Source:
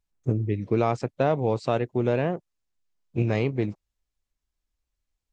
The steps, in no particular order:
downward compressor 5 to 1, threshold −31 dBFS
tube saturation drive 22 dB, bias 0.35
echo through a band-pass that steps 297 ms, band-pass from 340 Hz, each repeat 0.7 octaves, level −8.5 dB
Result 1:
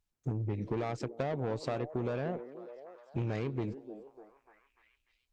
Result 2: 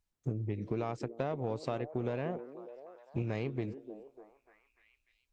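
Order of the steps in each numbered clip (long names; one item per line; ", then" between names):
tube saturation, then downward compressor, then echo through a band-pass that steps
downward compressor, then tube saturation, then echo through a band-pass that steps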